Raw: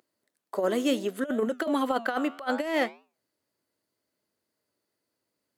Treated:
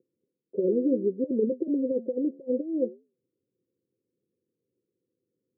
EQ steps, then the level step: HPF 110 Hz; rippled Chebyshev low-pass 530 Hz, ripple 6 dB; +7.5 dB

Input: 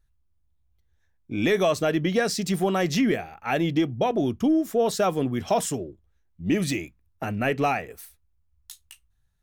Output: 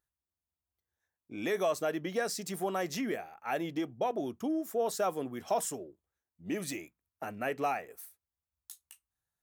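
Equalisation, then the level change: HPF 270 Hz 6 dB/oct; low shelf 450 Hz -10 dB; bell 3200 Hz -10 dB 2.2 oct; -2.0 dB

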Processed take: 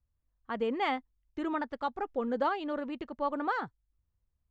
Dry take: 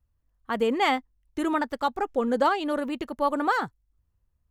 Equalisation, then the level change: Gaussian blur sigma 1.7 samples; -7.0 dB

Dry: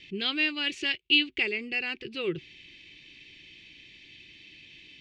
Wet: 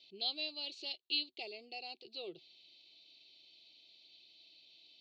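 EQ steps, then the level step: dynamic EQ 1500 Hz, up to -5 dB, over -42 dBFS, Q 1.5; double band-pass 1700 Hz, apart 2.6 oct; +2.5 dB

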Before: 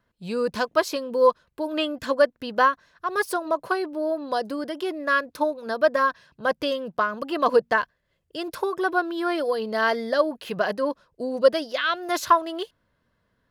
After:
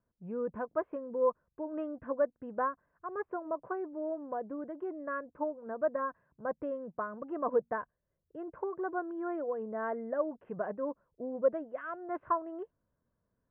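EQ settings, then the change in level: Gaussian blur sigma 6.3 samples; air absorption 91 m; -9.0 dB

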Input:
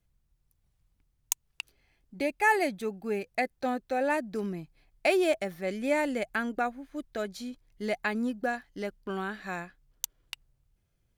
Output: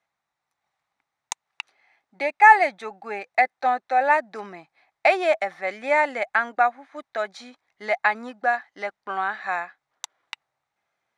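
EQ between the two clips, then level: speaker cabinet 290–9000 Hz, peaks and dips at 810 Hz +7 dB, 1200 Hz +4 dB, 2000 Hz +4 dB, 3800 Hz +9 dB, 5800 Hz +4 dB; band shelf 1200 Hz +11 dB 2.3 oct; -3.5 dB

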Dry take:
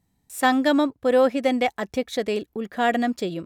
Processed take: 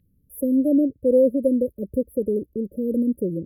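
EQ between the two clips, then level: brick-wall FIR band-stop 600–10000 Hz; low shelf 130 Hz +10 dB; band shelf 2700 Hz +15.5 dB; +1.0 dB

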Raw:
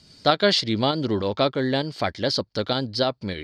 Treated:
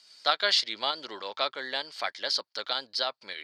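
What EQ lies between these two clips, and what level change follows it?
HPF 1000 Hz 12 dB/oct; -2.0 dB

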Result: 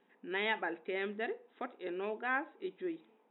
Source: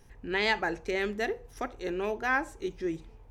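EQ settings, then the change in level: brick-wall FIR band-pass 180–3900 Hz; -6.5 dB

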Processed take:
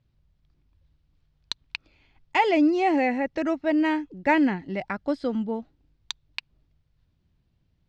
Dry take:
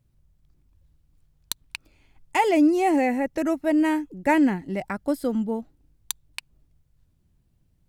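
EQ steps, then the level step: LPF 4700 Hz 24 dB/oct; tilt +1.5 dB/oct; bell 62 Hz +3.5 dB 2.6 oct; 0.0 dB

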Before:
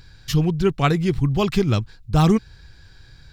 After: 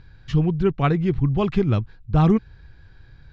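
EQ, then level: synth low-pass 6600 Hz, resonance Q 4.2; air absorption 500 m; 0.0 dB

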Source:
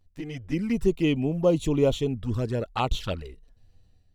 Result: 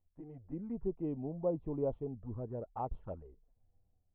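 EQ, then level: ladder low-pass 1000 Hz, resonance 40%; -6.5 dB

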